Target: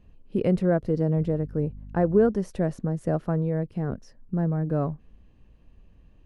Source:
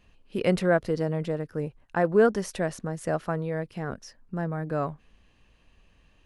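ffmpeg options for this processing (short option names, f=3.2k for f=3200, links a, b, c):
-filter_complex "[0:a]alimiter=limit=-13dB:level=0:latency=1:release=424,asettb=1/sr,asplit=3[a][b][c];[a]atrim=end=1.174[d];[b]atrim=start=1.17:end=2.3,asetpts=PTS-STARTPTS,afade=t=in:d=0.004:c=qsin,afade=t=out:st=1.126:d=0.004:c=qsin,aeval=exprs='val(0)+0.00447*(sin(2*PI*50*n/s)+sin(2*PI*2*50*n/s)/2+sin(2*PI*3*50*n/s)/3+sin(2*PI*4*50*n/s)/4+sin(2*PI*5*50*n/s)/5)':c=same[e];[c]atrim=start=2.296[f];[d][e]acrossfade=d=0.004:c1=hsin:c2=qsin[g];[g][f]acrossfade=d=0.004:c1=qsin:c2=hsin,tiltshelf=f=720:g=9,volume=-1.5dB"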